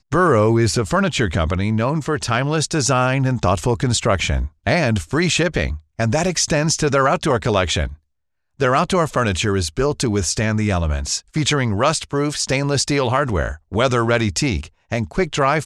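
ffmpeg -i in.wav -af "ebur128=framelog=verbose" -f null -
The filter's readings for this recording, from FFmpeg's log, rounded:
Integrated loudness:
  I:         -18.9 LUFS
  Threshold: -28.9 LUFS
Loudness range:
  LRA:         1.4 LU
  Threshold: -39.1 LUFS
  LRA low:   -19.7 LUFS
  LRA high:  -18.3 LUFS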